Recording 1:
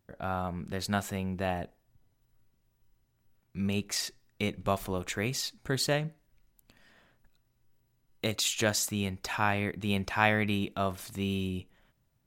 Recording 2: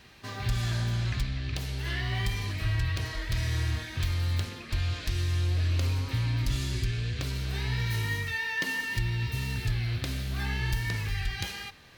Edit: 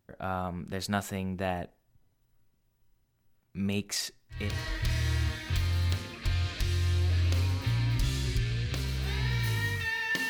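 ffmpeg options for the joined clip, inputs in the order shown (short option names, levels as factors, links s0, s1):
-filter_complex "[0:a]apad=whole_dur=10.29,atrim=end=10.29,atrim=end=4.59,asetpts=PTS-STARTPTS[s0];[1:a]atrim=start=2.76:end=8.76,asetpts=PTS-STARTPTS[s1];[s0][s1]acrossfade=d=0.3:c1=tri:c2=tri"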